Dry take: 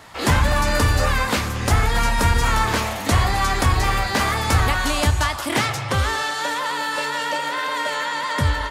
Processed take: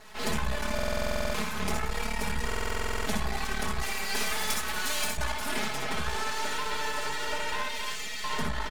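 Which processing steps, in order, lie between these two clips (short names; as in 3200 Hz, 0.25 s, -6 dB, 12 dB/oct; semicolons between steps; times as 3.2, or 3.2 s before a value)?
7.62–8.24 steep high-pass 2000 Hz 48 dB/oct; speakerphone echo 0.27 s, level -7 dB; compressor, threshold -22 dBFS, peak gain reduction 9.5 dB; reverb, pre-delay 54 ms, DRR 2 dB; flange 0.3 Hz, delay 0.4 ms, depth 7.2 ms, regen -74%; 3.82–5.17 tilt +2.5 dB/oct; half-wave rectifier; comb 4.7 ms, depth 98%; stuck buffer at 0.74/2.47, samples 2048, times 12; gain -1.5 dB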